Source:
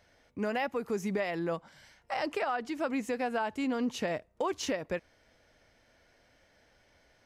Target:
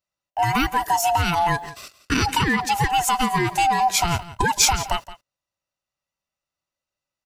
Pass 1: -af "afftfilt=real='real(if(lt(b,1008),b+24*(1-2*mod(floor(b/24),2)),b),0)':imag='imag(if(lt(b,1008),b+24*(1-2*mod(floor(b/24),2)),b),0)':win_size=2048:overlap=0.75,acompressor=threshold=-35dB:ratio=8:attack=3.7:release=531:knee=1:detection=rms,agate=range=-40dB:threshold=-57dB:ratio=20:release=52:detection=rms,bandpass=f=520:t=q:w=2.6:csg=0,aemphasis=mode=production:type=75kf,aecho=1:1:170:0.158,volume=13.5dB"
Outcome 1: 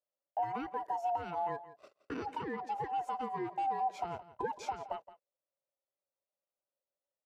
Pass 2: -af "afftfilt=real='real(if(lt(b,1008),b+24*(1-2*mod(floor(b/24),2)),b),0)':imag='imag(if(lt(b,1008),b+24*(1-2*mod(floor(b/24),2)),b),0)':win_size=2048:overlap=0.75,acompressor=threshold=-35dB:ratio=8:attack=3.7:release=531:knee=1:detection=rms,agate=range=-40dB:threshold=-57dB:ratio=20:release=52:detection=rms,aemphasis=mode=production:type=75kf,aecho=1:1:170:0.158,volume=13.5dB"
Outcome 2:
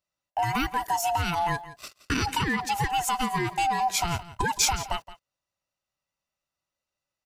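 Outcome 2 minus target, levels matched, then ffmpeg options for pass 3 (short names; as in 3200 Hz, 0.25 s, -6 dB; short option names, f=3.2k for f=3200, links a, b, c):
compressor: peak gain reduction +6 dB
-af "afftfilt=real='real(if(lt(b,1008),b+24*(1-2*mod(floor(b/24),2)),b),0)':imag='imag(if(lt(b,1008),b+24*(1-2*mod(floor(b/24),2)),b),0)':win_size=2048:overlap=0.75,acompressor=threshold=-28dB:ratio=8:attack=3.7:release=531:knee=1:detection=rms,agate=range=-40dB:threshold=-57dB:ratio=20:release=52:detection=rms,aemphasis=mode=production:type=75kf,aecho=1:1:170:0.158,volume=13.5dB"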